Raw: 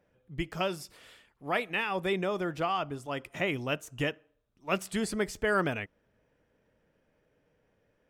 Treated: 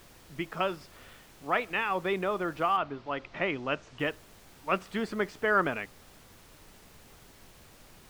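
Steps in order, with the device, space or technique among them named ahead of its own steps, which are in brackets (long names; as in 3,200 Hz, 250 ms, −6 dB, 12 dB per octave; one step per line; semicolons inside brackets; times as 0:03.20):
horn gramophone (band-pass filter 180–3,400 Hz; parametric band 1,200 Hz +5.5 dB; tape wow and flutter 25 cents; pink noise bed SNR 21 dB)
0:02.76–0:03.98: low-pass filter 4,100 Hz → 7,300 Hz 24 dB per octave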